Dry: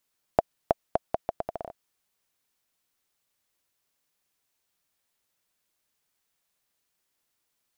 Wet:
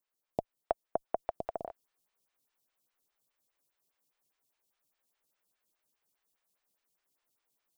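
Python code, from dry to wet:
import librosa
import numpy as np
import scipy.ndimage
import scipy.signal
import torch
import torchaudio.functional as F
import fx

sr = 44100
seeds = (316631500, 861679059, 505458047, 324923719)

y = fx.rider(x, sr, range_db=4, speed_s=0.5)
y = fx.stagger_phaser(y, sr, hz=4.9)
y = y * 10.0 ** (-4.0 / 20.0)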